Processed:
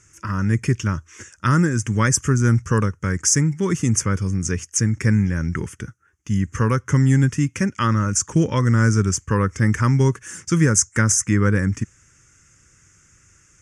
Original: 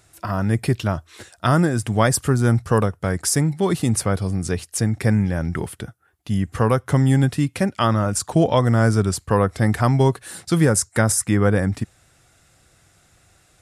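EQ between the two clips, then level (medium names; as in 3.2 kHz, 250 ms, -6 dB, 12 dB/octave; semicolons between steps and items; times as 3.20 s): resonant low-pass 6.3 kHz, resonance Q 6.3; static phaser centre 1.7 kHz, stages 4; +1.5 dB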